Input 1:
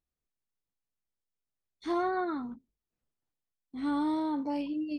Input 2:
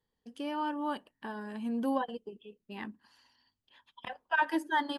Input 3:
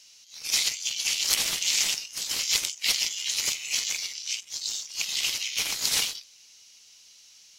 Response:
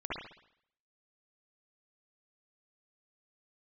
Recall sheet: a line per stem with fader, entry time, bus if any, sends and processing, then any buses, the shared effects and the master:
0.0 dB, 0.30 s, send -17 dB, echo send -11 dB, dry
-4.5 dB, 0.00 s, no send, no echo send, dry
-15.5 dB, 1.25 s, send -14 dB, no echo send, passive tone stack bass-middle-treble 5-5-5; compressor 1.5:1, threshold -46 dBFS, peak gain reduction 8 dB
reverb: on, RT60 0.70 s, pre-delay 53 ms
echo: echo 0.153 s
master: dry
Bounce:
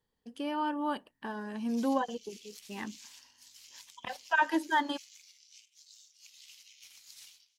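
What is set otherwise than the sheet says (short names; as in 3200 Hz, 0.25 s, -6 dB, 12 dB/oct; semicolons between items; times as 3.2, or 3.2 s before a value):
stem 1: muted; stem 2 -4.5 dB -> +1.5 dB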